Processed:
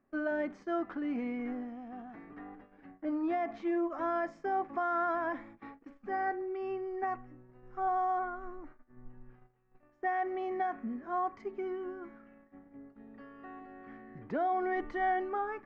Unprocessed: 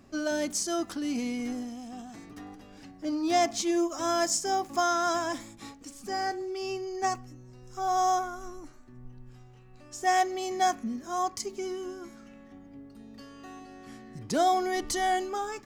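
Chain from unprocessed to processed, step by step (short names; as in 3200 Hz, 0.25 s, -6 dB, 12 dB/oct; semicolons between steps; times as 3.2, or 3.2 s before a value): limiter -22.5 dBFS, peak gain reduction 8.5 dB; Chebyshev low-pass 1900 Hz, order 3; gate -49 dBFS, range -15 dB; bell 79 Hz -11.5 dB 2.5 oct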